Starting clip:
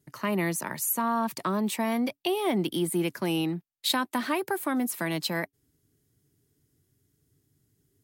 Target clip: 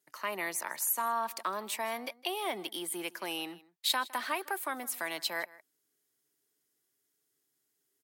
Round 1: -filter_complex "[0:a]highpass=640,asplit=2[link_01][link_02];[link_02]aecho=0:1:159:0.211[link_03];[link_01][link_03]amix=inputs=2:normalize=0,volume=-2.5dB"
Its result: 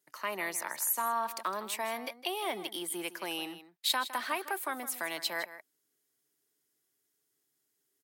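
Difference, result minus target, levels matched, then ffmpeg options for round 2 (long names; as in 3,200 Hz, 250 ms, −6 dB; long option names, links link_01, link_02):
echo-to-direct +7 dB
-filter_complex "[0:a]highpass=640,asplit=2[link_01][link_02];[link_02]aecho=0:1:159:0.0944[link_03];[link_01][link_03]amix=inputs=2:normalize=0,volume=-2.5dB"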